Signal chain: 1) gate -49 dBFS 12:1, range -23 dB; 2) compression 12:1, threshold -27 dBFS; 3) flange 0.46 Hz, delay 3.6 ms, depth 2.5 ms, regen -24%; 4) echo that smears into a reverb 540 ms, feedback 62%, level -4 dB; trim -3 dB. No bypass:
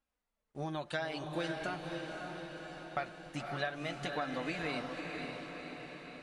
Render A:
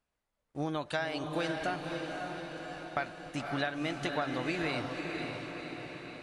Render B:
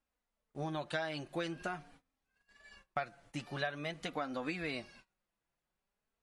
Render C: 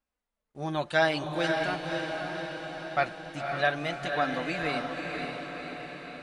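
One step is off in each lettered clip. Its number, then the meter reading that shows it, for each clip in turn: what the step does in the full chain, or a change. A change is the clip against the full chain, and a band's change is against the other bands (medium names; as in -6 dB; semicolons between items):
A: 3, 250 Hz band +1.5 dB; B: 4, echo-to-direct -2.0 dB to none; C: 2, mean gain reduction 5.5 dB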